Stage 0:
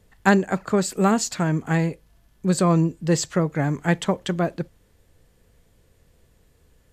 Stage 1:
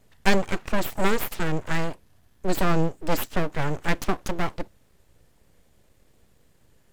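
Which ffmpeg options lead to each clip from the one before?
-af "aeval=exprs='abs(val(0))':c=same"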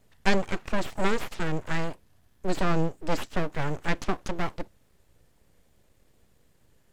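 -filter_complex "[0:a]acrossover=split=8400[a][b];[b]acompressor=threshold=-56dB:ratio=4:attack=1:release=60[c];[a][c]amix=inputs=2:normalize=0,volume=-3dB"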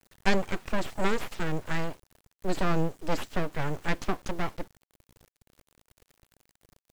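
-af "acrusher=bits=6:dc=4:mix=0:aa=0.000001,volume=-1.5dB"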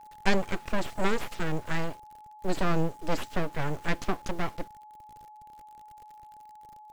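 -af "aeval=exprs='val(0)+0.00447*sin(2*PI*850*n/s)':c=same"

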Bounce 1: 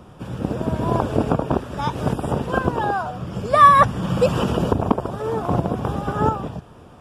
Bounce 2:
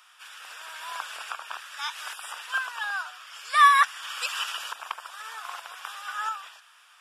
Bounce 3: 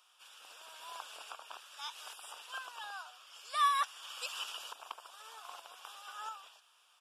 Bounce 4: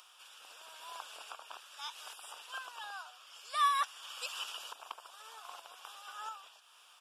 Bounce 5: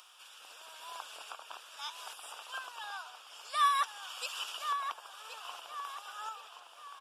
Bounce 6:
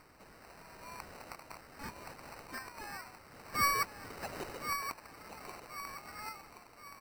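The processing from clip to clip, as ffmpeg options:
-af "highpass=f=1.5k:w=0.5412,highpass=f=1.5k:w=1.3066,volume=3.5dB"
-af "firequalizer=gain_entry='entry(310,0);entry(1900,-19);entry(2800,-7)':delay=0.05:min_phase=1,volume=-2dB"
-af "acompressor=mode=upward:threshold=-52dB:ratio=2.5"
-filter_complex "[0:a]asplit=2[a][b];[b]adelay=1074,lowpass=f=2.6k:p=1,volume=-6.5dB,asplit=2[c][d];[d]adelay=1074,lowpass=f=2.6k:p=1,volume=0.42,asplit=2[e][f];[f]adelay=1074,lowpass=f=2.6k:p=1,volume=0.42,asplit=2[g][h];[h]adelay=1074,lowpass=f=2.6k:p=1,volume=0.42,asplit=2[i][j];[j]adelay=1074,lowpass=f=2.6k:p=1,volume=0.42[k];[a][c][e][g][i][k]amix=inputs=6:normalize=0,volume=1.5dB"
-af "acrusher=samples=13:mix=1:aa=0.000001,volume=-2.5dB"

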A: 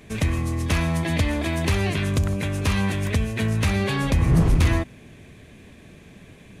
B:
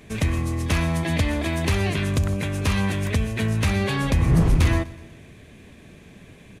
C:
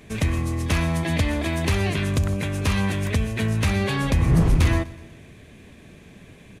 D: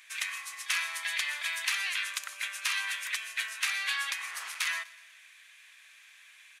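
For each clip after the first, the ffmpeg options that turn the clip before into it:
-af "aecho=1:1:124|248|372|496:0.0891|0.0463|0.0241|0.0125"
-af anull
-af "highpass=f=1.4k:w=0.5412,highpass=f=1.4k:w=1.3066"

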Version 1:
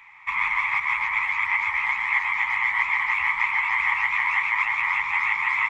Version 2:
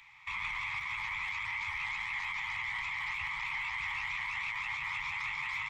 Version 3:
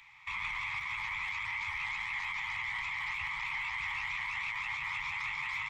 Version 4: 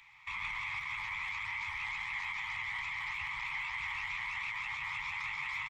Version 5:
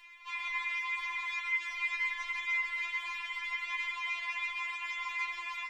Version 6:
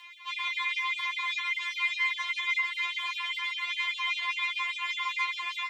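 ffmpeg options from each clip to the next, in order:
-filter_complex "[0:a]equalizer=f=125:t=o:w=1:g=5,equalizer=f=250:t=o:w=1:g=-10,equalizer=f=500:t=o:w=1:g=-6,equalizer=f=1k:t=o:w=1:g=-8,equalizer=f=2k:t=o:w=1:g=-9,equalizer=f=4k:t=o:w=1:g=6,acrossover=split=240[a][b];[b]alimiter=level_in=4.5dB:limit=-24dB:level=0:latency=1:release=19,volume=-4.5dB[c];[a][c]amix=inputs=2:normalize=0"
-af anull
-af "aecho=1:1:131:0.251,volume=-2dB"
-filter_complex "[0:a]asplit=2[a][b];[b]alimiter=level_in=11dB:limit=-24dB:level=0:latency=1:release=20,volume=-11dB,volume=2dB[c];[a][c]amix=inputs=2:normalize=0,afftfilt=real='re*4*eq(mod(b,16),0)':imag='im*4*eq(mod(b,16),0)':win_size=2048:overlap=0.75"
-af "afreqshift=13,superequalizer=9b=1.58:13b=2,afftfilt=real='re*gte(b*sr/1024,240*pow(2600/240,0.5+0.5*sin(2*PI*5*pts/sr)))':imag='im*gte(b*sr/1024,240*pow(2600/240,0.5+0.5*sin(2*PI*5*pts/sr)))':win_size=1024:overlap=0.75,volume=5dB"

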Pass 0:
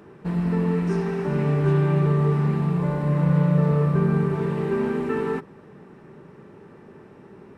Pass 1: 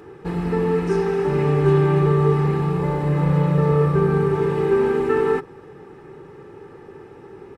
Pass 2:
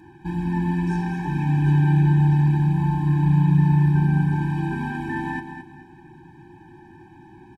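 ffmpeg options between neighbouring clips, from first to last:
-af "aecho=1:1:2.4:0.63,volume=3.5dB"
-af "aecho=1:1:218|436|654:0.355|0.103|0.0298,afftfilt=real='re*eq(mod(floor(b*sr/1024/370),2),0)':imag='im*eq(mod(floor(b*sr/1024/370),2),0)':win_size=1024:overlap=0.75,volume=-1dB"

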